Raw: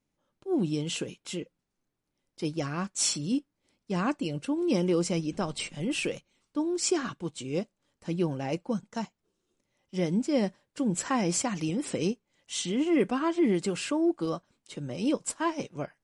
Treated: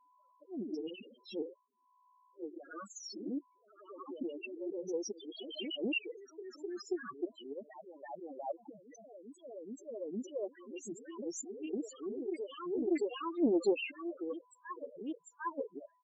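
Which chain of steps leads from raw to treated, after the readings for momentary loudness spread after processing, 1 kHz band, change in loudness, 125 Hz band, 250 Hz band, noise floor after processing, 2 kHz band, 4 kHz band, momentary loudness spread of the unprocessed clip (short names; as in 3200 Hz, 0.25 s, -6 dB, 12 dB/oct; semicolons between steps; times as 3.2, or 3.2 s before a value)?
15 LU, -10.5 dB, -10.0 dB, -25.5 dB, -11.0 dB, -71 dBFS, -8.0 dB, -10.5 dB, 12 LU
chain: HPF 370 Hz 12 dB/oct; high shelf 5300 Hz -5 dB; harmonic-percussive split harmonic -12 dB; auto swell 0.601 s; in parallel at +1.5 dB: compressor 8:1, threshold -53 dBFS, peak gain reduction 19.5 dB; on the sum: downsampling 16000 Hz; whine 1000 Hz -74 dBFS; LFO notch saw down 0.97 Hz 590–2700 Hz; echoes that change speed 0.111 s, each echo +1 st, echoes 3, each echo -6 dB; loudest bins only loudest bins 4; Doppler distortion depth 0.24 ms; gain +8.5 dB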